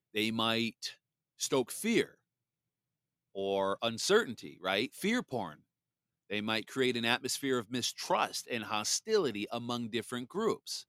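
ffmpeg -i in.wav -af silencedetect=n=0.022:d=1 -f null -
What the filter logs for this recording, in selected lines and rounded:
silence_start: 2.03
silence_end: 3.38 | silence_duration: 1.34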